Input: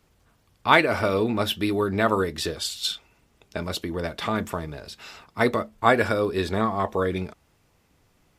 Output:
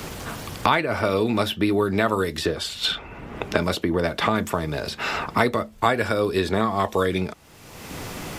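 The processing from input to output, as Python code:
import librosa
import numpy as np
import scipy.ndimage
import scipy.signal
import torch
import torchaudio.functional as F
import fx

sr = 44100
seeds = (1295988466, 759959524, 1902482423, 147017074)

y = fx.band_squash(x, sr, depth_pct=100)
y = y * librosa.db_to_amplitude(1.5)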